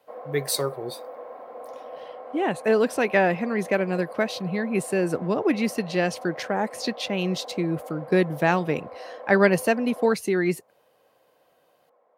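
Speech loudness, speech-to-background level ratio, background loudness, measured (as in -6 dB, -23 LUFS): -24.5 LUFS, 15.5 dB, -40.0 LUFS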